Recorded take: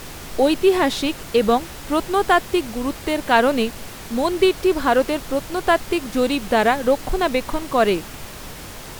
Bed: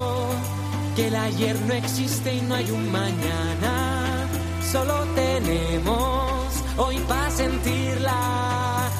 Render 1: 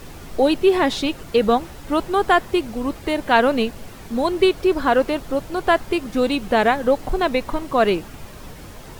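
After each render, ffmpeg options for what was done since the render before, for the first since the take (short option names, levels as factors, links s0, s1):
-af "afftdn=nr=8:nf=-36"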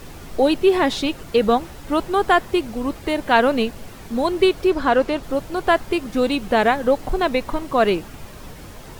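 -filter_complex "[0:a]asettb=1/sr,asplit=3[s0][s1][s2];[s0]atrim=end=4.704[s3];[s1]atrim=start=4.7:end=5.23,asetpts=PTS-STARTPTS,afade=t=in:d=0.004:c=qsin,afade=t=out:st=0.526:d=0.004:c=qsin,acrossover=split=8300[s4][s5];[s5]acompressor=threshold=0.00158:ratio=4:attack=1:release=60[s6];[s4][s6]amix=inputs=2:normalize=0[s7];[s2]atrim=start=5.226[s8];[s3][s7]acrossfade=d=0.004:c1=hsin:c2=qsin[s9];[s9][s8]acrossfade=d=0.004:c1=qsin:c2=hsin"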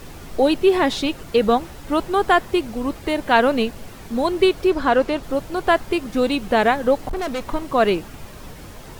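-filter_complex "[0:a]asettb=1/sr,asplit=3[s0][s1][s2];[s0]atrim=end=7.094[s3];[s1]atrim=start=7.09:end=7.51,asetpts=PTS-STARTPTS,afade=t=in:d=0.004:c=qsin,afade=t=out:st=0.416:d=0.004:c=qsin,volume=13.3,asoftclip=hard,volume=0.075[s4];[s2]atrim=start=7.506[s5];[s3][s4]acrossfade=d=0.004:c1=hsin:c2=qsin[s6];[s6][s5]acrossfade=d=0.004:c1=qsin:c2=hsin"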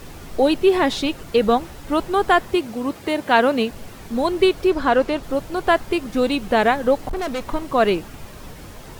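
-filter_complex "[0:a]asettb=1/sr,asplit=3[s0][s1][s2];[s0]atrim=end=2.554[s3];[s1]atrim=start=2.55:end=3.71,asetpts=PTS-STARTPTS,afade=t=in:d=0.004:c=qsin,afade=t=out:st=1.156:d=0.004:c=qsin,highpass=110[s4];[s2]atrim=start=3.706[s5];[s3][s4]acrossfade=d=0.004:c1=hsin:c2=qsin[s6];[s6][s5]acrossfade=d=0.004:c1=qsin:c2=hsin"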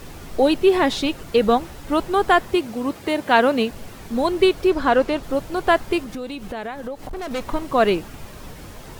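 -filter_complex "[0:a]asettb=1/sr,asplit=3[s0][s1][s2];[s0]atrim=end=6.014[s3];[s1]atrim=start=6.01:end=7.31,asetpts=PTS-STARTPTS,afade=t=in:d=0.004:c=qsin,afade=t=out:st=1.296:d=0.004:c=qsin,acompressor=threshold=0.0355:ratio=4:attack=3.2:release=140:knee=1:detection=peak[s4];[s2]atrim=start=7.306[s5];[s3][s4]acrossfade=d=0.004:c1=hsin:c2=qsin[s6];[s6][s5]acrossfade=d=0.004:c1=qsin:c2=hsin"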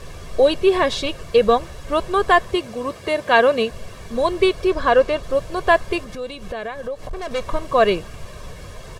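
-af "lowpass=9600,aecho=1:1:1.8:0.6"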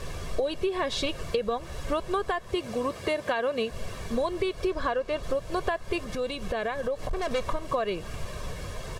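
-af "alimiter=limit=0.398:level=0:latency=1:release=288,acompressor=threshold=0.0631:ratio=12"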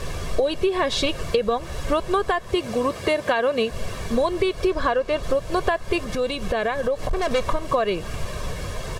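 -af "volume=2.11"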